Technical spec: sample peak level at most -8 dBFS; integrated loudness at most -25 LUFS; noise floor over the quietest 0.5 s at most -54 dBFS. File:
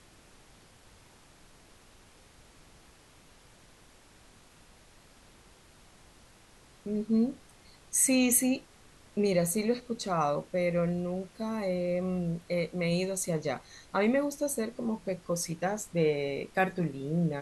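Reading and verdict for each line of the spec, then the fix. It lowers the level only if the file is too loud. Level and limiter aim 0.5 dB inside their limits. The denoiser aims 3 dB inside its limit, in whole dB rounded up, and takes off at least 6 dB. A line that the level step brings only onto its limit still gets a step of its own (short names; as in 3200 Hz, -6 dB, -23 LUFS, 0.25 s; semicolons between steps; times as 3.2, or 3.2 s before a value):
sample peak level -12.0 dBFS: OK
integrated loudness -30.0 LUFS: OK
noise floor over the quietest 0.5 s -58 dBFS: OK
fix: none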